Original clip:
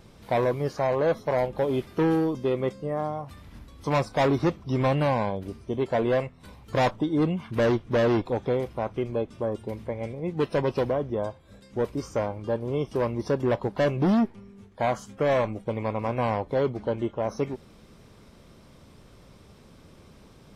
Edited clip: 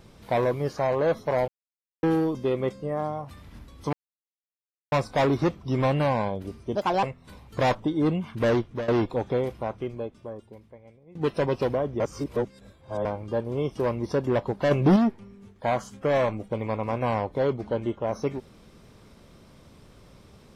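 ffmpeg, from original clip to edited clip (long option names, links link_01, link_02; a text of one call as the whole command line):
ffmpeg -i in.wav -filter_complex "[0:a]asplit=12[link_01][link_02][link_03][link_04][link_05][link_06][link_07][link_08][link_09][link_10][link_11][link_12];[link_01]atrim=end=1.48,asetpts=PTS-STARTPTS,afade=type=out:start_time=1.476:duration=0.004:curve=hsin[link_13];[link_02]atrim=start=1.48:end=2.03,asetpts=PTS-STARTPTS,volume=0[link_14];[link_03]atrim=start=2.03:end=3.93,asetpts=PTS-STARTPTS,afade=type=in:duration=0.004:curve=hsin,afade=type=out:start_time=1.896:duration=0.004:curve=hsin,apad=pad_dur=0.99[link_15];[link_04]atrim=start=3.93:end=5.764,asetpts=PTS-STARTPTS,afade=type=in:duration=0.004:curve=hsin[link_16];[link_05]atrim=start=5.76:end=6.19,asetpts=PTS-STARTPTS,asetrate=67473,aresample=44100,atrim=end_sample=12394,asetpts=PTS-STARTPTS[link_17];[link_06]atrim=start=6.186:end=8.04,asetpts=PTS-STARTPTS,afade=type=out:start_time=1.474:duration=0.38:curve=qsin:silence=0.149624[link_18];[link_07]atrim=start=8.04:end=10.31,asetpts=PTS-STARTPTS,afade=type=in:duration=0.004:curve=hsin:silence=0.149624,afade=type=out:start_time=0.65:duration=1.62:curve=qua:silence=0.0891251[link_19];[link_08]atrim=start=10.31:end=11.162,asetpts=PTS-STARTPTS,afade=type=in:duration=0.004:curve=hsin:silence=0.0891251[link_20];[link_09]atrim=start=11.158:end=12.212,asetpts=PTS-STARTPTS,areverse[link_21];[link_10]atrim=start=12.208:end=13.872[link_22];[link_11]atrim=start=13.868:end=14.122,asetpts=PTS-STARTPTS,volume=4.5dB[link_23];[link_12]atrim=start=14.118[link_24];[link_13][link_14][link_15][link_16]concat=n=4:v=0:a=1[link_25];[link_25][link_17]acrossfade=duration=0.004:curve1=hsin:curve2=hsin[link_26];[link_18][link_19][link_20]concat=n=3:v=0:a=1[link_27];[link_26][link_27]acrossfade=duration=0.004:curve1=hsin:curve2=hsin[link_28];[link_28][link_21]acrossfade=duration=0.004:curve1=hsin:curve2=hsin[link_29];[link_29][link_22]acrossfade=duration=0.004:curve1=hsin:curve2=hsin[link_30];[link_30][link_23]acrossfade=duration=0.004:curve1=hsin:curve2=hsin[link_31];[link_31][link_24]acrossfade=duration=0.004:curve1=hsin:curve2=hsin" out.wav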